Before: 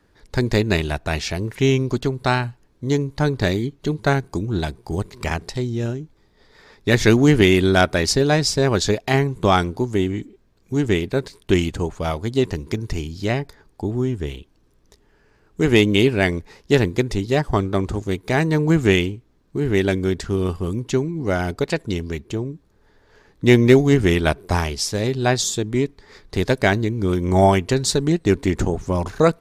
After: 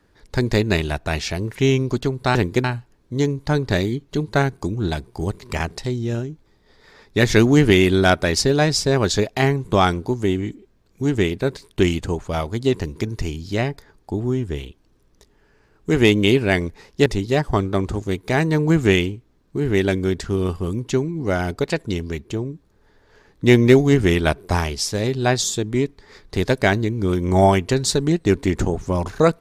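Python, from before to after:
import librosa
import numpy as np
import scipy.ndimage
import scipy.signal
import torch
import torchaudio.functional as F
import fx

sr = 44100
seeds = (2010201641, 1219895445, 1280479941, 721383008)

y = fx.edit(x, sr, fx.move(start_s=16.77, length_s=0.29, to_s=2.35), tone=tone)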